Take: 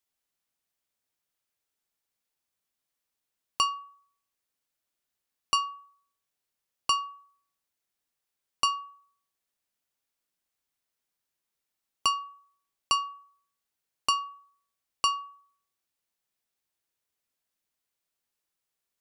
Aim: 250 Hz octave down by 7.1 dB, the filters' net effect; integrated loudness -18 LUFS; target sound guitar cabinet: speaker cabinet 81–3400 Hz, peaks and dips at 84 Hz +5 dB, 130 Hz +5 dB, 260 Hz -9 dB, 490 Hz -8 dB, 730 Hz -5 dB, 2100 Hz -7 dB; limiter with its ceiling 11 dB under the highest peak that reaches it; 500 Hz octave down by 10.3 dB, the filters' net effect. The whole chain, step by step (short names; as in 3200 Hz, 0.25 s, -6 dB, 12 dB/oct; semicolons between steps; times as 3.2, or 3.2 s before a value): bell 250 Hz -4 dB; bell 500 Hz -6.5 dB; limiter -23 dBFS; speaker cabinet 81–3400 Hz, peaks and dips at 84 Hz +5 dB, 130 Hz +5 dB, 260 Hz -9 dB, 490 Hz -8 dB, 730 Hz -5 dB, 2100 Hz -7 dB; gain +19.5 dB